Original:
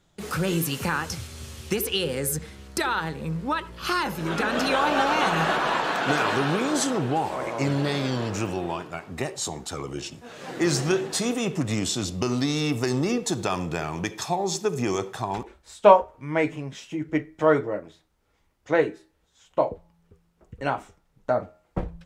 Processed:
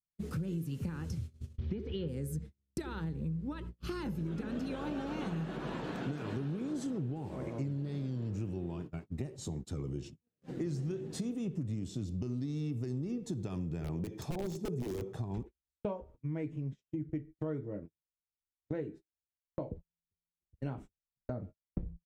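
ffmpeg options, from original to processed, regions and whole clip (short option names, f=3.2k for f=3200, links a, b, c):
-filter_complex "[0:a]asettb=1/sr,asplit=3[a][b][c];[a]atrim=end=1.584[d];[b]atrim=start=1.58:end=2.08,asetpts=PTS-STARTPTS,afade=t=in:d=0.004:c=qsin,afade=t=out:st=0.496:d=0.004:c=qsin,aeval=exprs='val(0)+0.5*0.0266*sgn(val(0))':c=same,lowpass=f=3.8k:w=0.5412,lowpass=f=3.8k:w=1.3066,bandreject=f=2.7k:w=9.9[e];[c]atrim=start=2.076[f];[d][e]acrossfade=d=0.004:c1=hsin:c2=qsin[g];[g][f]acrossfade=d=0.004:c1=qsin:c2=hsin,asettb=1/sr,asplit=3[h][i][j];[h]atrim=end=13.844[k];[i]atrim=start=13.84:end=15.22,asetpts=PTS-STARTPTS,afade=t=in:d=0.004:c=qsin,afade=t=out:st=1.376:d=0.004:c=qsin,aeval=exprs='(mod(9.44*val(0)+1,2)-1)/9.44':c=same,equalizer=f=560:t=o:w=1.7:g=7[l];[j]atrim=start=15.216[m];[k][l]acrossfade=d=0.004:c1=hsin:c2=qsin[n];[n][m]acrossfade=d=0.004:c1=qsin:c2=hsin,agate=range=-42dB:threshold=-36dB:ratio=16:detection=peak,firequalizer=gain_entry='entry(120,0);entry(710,-21);entry(1100,-23);entry(2200,-21)':delay=0.05:min_phase=1,acompressor=threshold=-38dB:ratio=6,volume=4dB"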